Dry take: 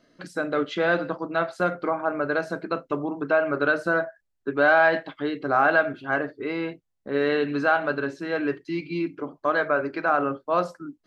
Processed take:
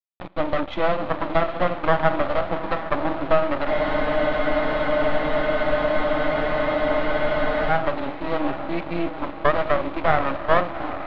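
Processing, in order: level-crossing sampler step -35.5 dBFS; low shelf 260 Hz -10 dB; notch 2800 Hz, Q 5.6; compressor, threshold -23 dBFS, peak gain reduction 8.5 dB; bell 440 Hz +12.5 dB 2.2 oct; fixed phaser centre 1600 Hz, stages 6; on a send: diffused feedback echo 0.779 s, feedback 53%, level -10 dB; on the sum: Schroeder reverb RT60 1.5 s, combs from 33 ms, DRR 18.5 dB; half-wave rectifier; LPF 3800 Hz 24 dB/oct; spectral freeze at 3.7, 3.99 s; gain +9 dB

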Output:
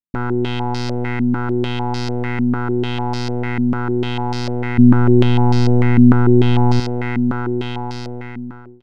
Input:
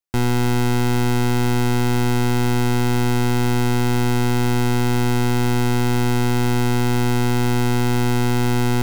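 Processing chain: ending faded out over 1.57 s; 4.78–6.8 low shelf 420 Hz +11 dB; stepped low-pass 6.7 Hz 240–4900 Hz; gain -4 dB

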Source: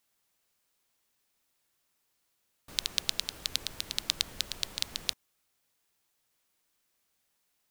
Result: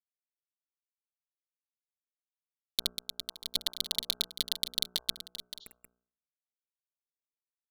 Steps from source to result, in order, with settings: fuzz box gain 42 dB, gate -34 dBFS; comb 4.6 ms, depth 69%; tapped delay 0.57/0.752 s -12/-18.5 dB; 5.64–5.9 spectral repair 2800–7300 Hz both; de-hum 60.34 Hz, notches 26; 2.88–3.53 compressor 1.5:1, threshold -46 dBFS, peak gain reduction 8.5 dB; gain -1 dB

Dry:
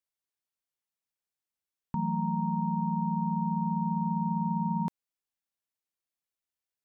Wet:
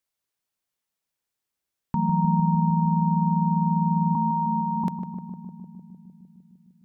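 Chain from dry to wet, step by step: 4.15–4.84 steep high-pass 200 Hz 96 dB/oct; darkening echo 0.152 s, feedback 80%, low-pass 1000 Hz, level -7 dB; gain +6.5 dB

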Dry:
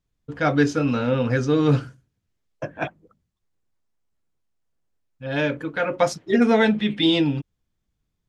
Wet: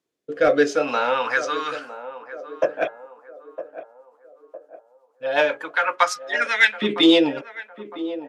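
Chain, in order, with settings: LFO high-pass saw up 0.44 Hz 350–2200 Hz; de-hum 413.4 Hz, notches 5; in parallel at -6.5 dB: overloaded stage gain 14 dB; on the sum: rotary speaker horn 0.65 Hz, later 8 Hz, at 2.55; on a send: narrowing echo 0.958 s, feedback 47%, band-pass 540 Hz, level -12 dB; on the sum: downsampling 32000 Hz; gain +2.5 dB

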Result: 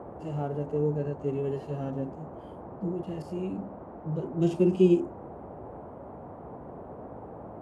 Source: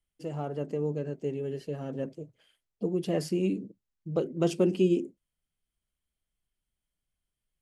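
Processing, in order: 2.91–3.58 level quantiser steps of 18 dB; harmonic-percussive split percussive -18 dB; band noise 55–810 Hz -47 dBFS; gain +4 dB

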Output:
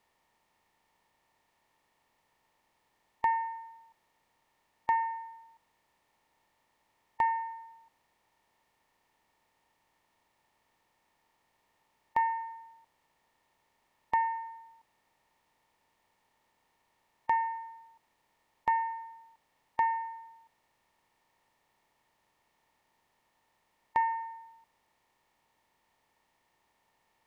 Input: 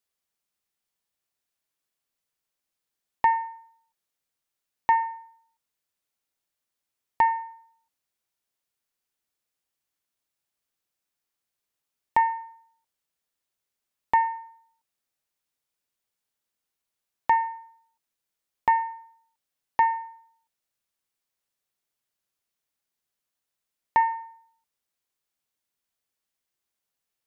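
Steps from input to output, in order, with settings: per-bin compression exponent 0.6; gain -8 dB

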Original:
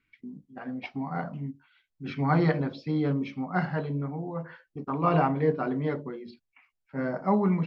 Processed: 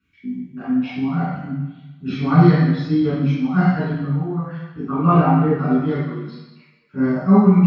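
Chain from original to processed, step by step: reverb removal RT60 1.5 s; 4.83–5.57 LPF 3700 Hz -> 2100 Hz 12 dB/oct; reverb RT60 1.0 s, pre-delay 3 ms, DRR -10 dB; gain -6 dB

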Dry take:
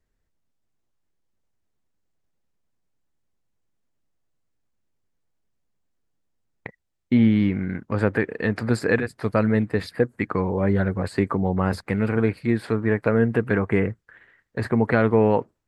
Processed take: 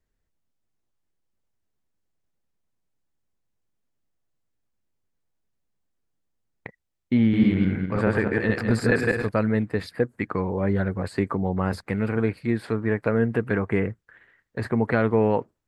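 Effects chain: 7.23–9.29 regenerating reverse delay 0.105 s, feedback 47%, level 0 dB; gain -2.5 dB

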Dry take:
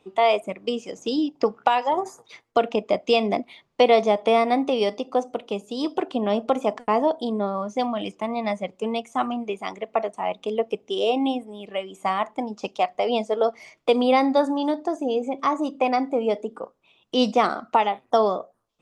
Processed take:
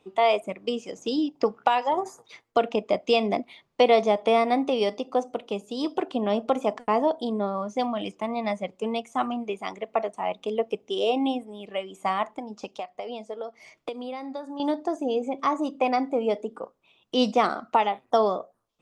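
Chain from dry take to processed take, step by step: 12.23–14.6 compressor 16:1, threshold -29 dBFS, peak gain reduction 16.5 dB; gain -2 dB

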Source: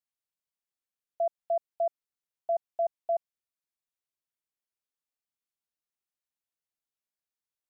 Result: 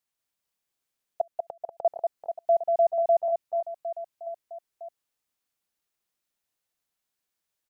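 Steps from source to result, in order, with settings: 1.21–1.85 flipped gate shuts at -30 dBFS, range -35 dB; reverse bouncing-ball echo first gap 0.19 s, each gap 1.3×, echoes 5; gain +7 dB

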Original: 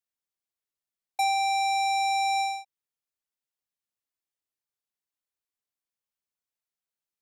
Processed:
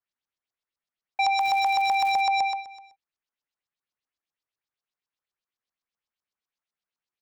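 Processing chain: echo 0.315 s -19.5 dB; LFO low-pass saw up 7.9 Hz 990–6000 Hz; 1.38–2.2 crackle 230/s -30 dBFS

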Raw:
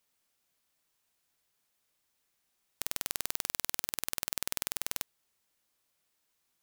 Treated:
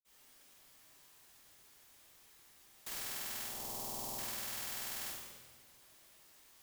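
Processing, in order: 3.4–4.12 EQ curve 1000 Hz 0 dB, 1500 Hz -22 dB, 5600 Hz -7 dB; compressor 10:1, threshold -47 dBFS, peak gain reduction 20 dB; reverb RT60 1.5 s, pre-delay 47 ms, DRR -60 dB; gain +17 dB

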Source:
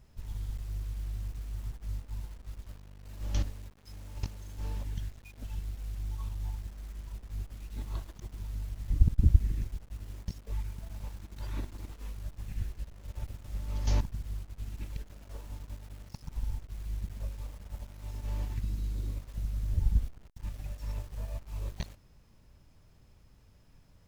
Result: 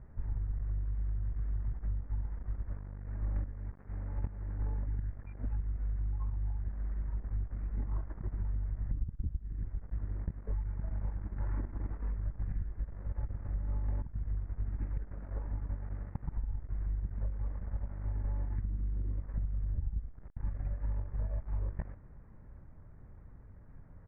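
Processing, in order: steep low-pass 2000 Hz 48 dB/oct; low shelf 310 Hz +3.5 dB; pitch shift -0.5 st; compressor 16:1, threshold -34 dBFS, peak gain reduction 25 dB; gain +4 dB

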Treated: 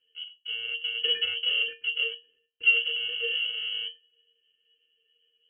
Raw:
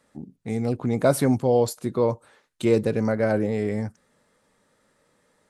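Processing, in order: FFT order left unsorted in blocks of 64 samples; in parallel at +2 dB: level quantiser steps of 10 dB; on the sum: octave resonator E, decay 0.23 s; inverted band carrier 3100 Hz; gain +8 dB

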